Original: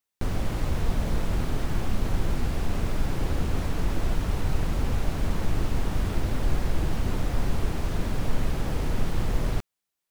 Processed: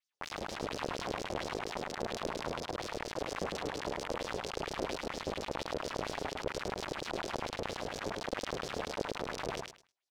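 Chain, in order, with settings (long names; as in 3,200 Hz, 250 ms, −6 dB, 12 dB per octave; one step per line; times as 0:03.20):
each half-wave held at its own peak
auto-filter band-pass sine 4.3 Hz 460–5,800 Hz
repeating echo 105 ms, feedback 18%, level −3.5 dB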